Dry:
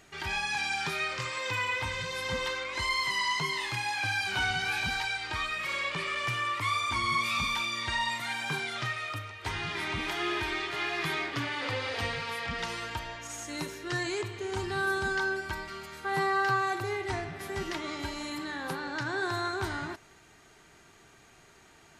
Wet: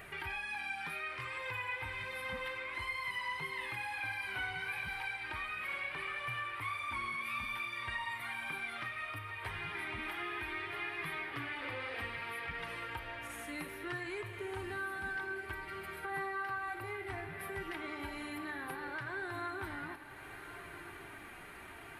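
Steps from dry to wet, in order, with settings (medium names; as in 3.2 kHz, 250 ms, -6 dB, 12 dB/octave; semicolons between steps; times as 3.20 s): FFT filter 600 Hz 0 dB, 2.3 kHz +5 dB, 6.7 kHz -17 dB, 10 kHz +5 dB; compression 2.5:1, threshold -53 dBFS, peak gain reduction 20 dB; flange 0.63 Hz, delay 1.6 ms, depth 2.5 ms, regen -42%; on a send: echo that smears into a reverb 1218 ms, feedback 42%, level -12 dB; on the sum: trim +9.5 dB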